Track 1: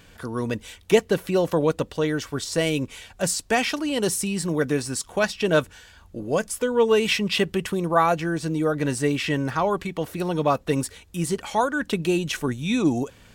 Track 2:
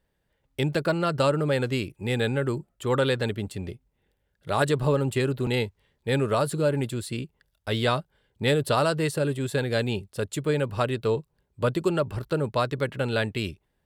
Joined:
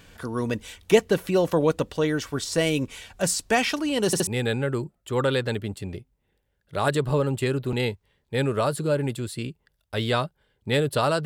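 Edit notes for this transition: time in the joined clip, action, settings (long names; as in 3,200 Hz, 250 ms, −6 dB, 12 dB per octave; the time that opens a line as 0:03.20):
track 1
0:04.06: stutter in place 0.07 s, 3 plays
0:04.27: continue with track 2 from 0:02.01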